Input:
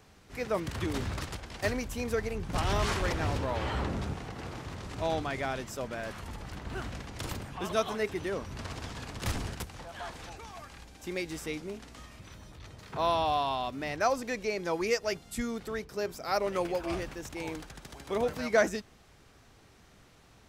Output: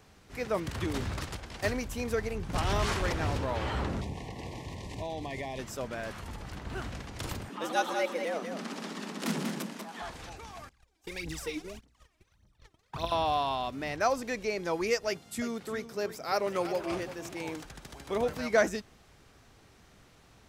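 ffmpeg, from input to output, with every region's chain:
ffmpeg -i in.wav -filter_complex "[0:a]asettb=1/sr,asplit=3[link_01][link_02][link_03];[link_01]atrim=end=4.014[link_04];[link_02]atrim=start=4.01:end=5.59,asetpts=PTS-STARTPTS,afade=type=in:duration=0.004:curve=qsin,afade=type=out:start_time=1.576:duration=0.004:curve=qsin,acompressor=threshold=-32dB:ratio=6:attack=3.2:release=140:knee=1:detection=peak,asuperstop=centerf=1400:order=12:qfactor=2.2[link_05];[link_03]atrim=start=5.586[link_06];[link_04][link_05]acrossfade=duration=0.004:curve1=hsin:curve2=qsin[link_07];[link_07][link_06]acrossfade=duration=0.004:curve1=qsin:curve2=hsin,asettb=1/sr,asplit=3[link_08][link_09][link_10];[link_08]atrim=end=7.494[link_11];[link_09]atrim=start=7.49:end=10.02,asetpts=PTS-STARTPTS,afade=type=in:duration=0.004:curve=qsin,afade=type=out:start_time=2.526:duration=0.004:curve=qsin,aecho=1:1:191:0.473,atrim=end_sample=111573,afreqshift=140[link_12];[link_10]atrim=start=10.016[link_13];[link_11][link_12]acrossfade=duration=0.004:curve1=hsin:curve2=qsin[link_14];[link_14][link_13]acrossfade=duration=0.004:curve1=qsin:curve2=hsin,asettb=1/sr,asplit=3[link_15][link_16][link_17];[link_15]atrim=end=10.694[link_18];[link_16]atrim=start=10.69:end=13.12,asetpts=PTS-STARTPTS,afade=type=in:duration=0.004:curve=qsin,afade=type=out:start_time=2.426:duration=0.004:curve=qsin,agate=range=-25dB:threshold=-45dB:ratio=16:release=100:detection=peak,acrossover=split=86|2200[link_19][link_20][link_21];[link_19]acompressor=threshold=-54dB:ratio=4[link_22];[link_20]acompressor=threshold=-39dB:ratio=4[link_23];[link_21]acompressor=threshold=-43dB:ratio=4[link_24];[link_22][link_23][link_24]amix=inputs=3:normalize=0,aphaser=in_gain=1:out_gain=1:delay=3.2:decay=0.76:speed=1.7:type=triangular[link_25];[link_17]atrim=start=13.116[link_26];[link_18][link_25]acrossfade=duration=0.004:curve1=hsin:curve2=qsin[link_27];[link_27][link_26]acrossfade=duration=0.004:curve1=qsin:curve2=hsin,asettb=1/sr,asplit=3[link_28][link_29][link_30];[link_28]atrim=end=15.074[link_31];[link_29]atrim=start=15.07:end=17.65,asetpts=PTS-STARTPTS,afade=type=in:duration=0.004:curve=qsin,afade=type=out:start_time=2.576:duration=0.004:curve=qsin,highpass=110,aecho=1:1:346:0.224,atrim=end_sample=113778[link_32];[link_30]atrim=start=17.646[link_33];[link_31][link_32]acrossfade=duration=0.004:curve1=hsin:curve2=qsin[link_34];[link_34][link_33]acrossfade=duration=0.004:curve1=qsin:curve2=hsin" out.wav

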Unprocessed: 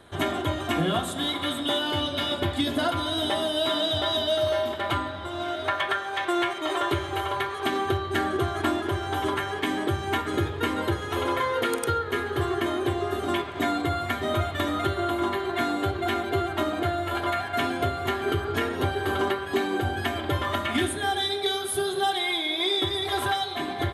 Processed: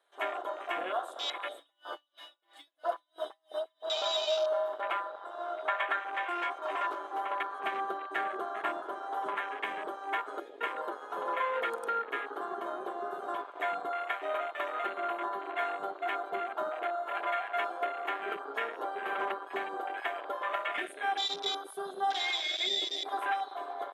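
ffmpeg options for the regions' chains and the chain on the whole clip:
ffmpeg -i in.wav -filter_complex "[0:a]asettb=1/sr,asplit=3[link_01][link_02][link_03];[link_01]atrim=end=1.574[link_04];[link_02]atrim=start=1.57:end=3.89,asetpts=PTS-STARTPTS,afade=type=in:duration=0.004:curve=qsin,afade=type=out:start_time=2.316:duration=0.004:curve=qsin,aecho=1:1:6.1:0.74,atrim=end_sample=102312,acrusher=bits=9:mode=log:mix=0:aa=0.000001,aeval=exprs='val(0)*pow(10,-35*(0.5-0.5*cos(2*PI*3*n/s))/20)':channel_layout=same[link_05];[link_03]atrim=start=3.886[link_06];[link_04][link_05]acrossfade=duration=0.004:curve1=hsin:curve2=qsin[link_07];[link_07][link_06]acrossfade=duration=0.004:curve1=qsin:curve2=hsin,asettb=1/sr,asplit=3[link_08][link_09][link_10];[link_08]atrim=end=6.234[link_11];[link_09]atrim=start=6.23:end=7.22,asetpts=PTS-STARTPTS,afade=type=in:duration=0.004:curve=qsin,afade=type=out:start_time=0.986:duration=0.004:curve=qsin,asoftclip=type=hard:threshold=-23.5dB,asplit=2[link_12][link_13];[link_13]adelay=18,volume=-8dB[link_14];[link_12][link_14]amix=inputs=2:normalize=0,atrim=end_sample=43659[link_15];[link_10]atrim=start=7.216[link_16];[link_11][link_15]acrossfade=duration=0.004:curve1=hsin:curve2=qsin[link_17];[link_17][link_16]acrossfade=duration=0.004:curve1=qsin:curve2=hsin,highpass=frequency=500:width=0.5412,highpass=frequency=500:width=1.3066,afwtdn=0.0316,volume=-4dB" out.wav

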